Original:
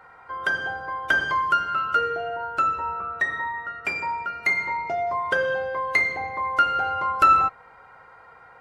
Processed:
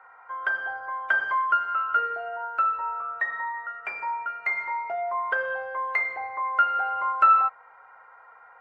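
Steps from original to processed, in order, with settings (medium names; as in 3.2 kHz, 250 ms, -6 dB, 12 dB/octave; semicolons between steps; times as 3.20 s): three-band isolator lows -22 dB, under 600 Hz, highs -23 dB, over 2.2 kHz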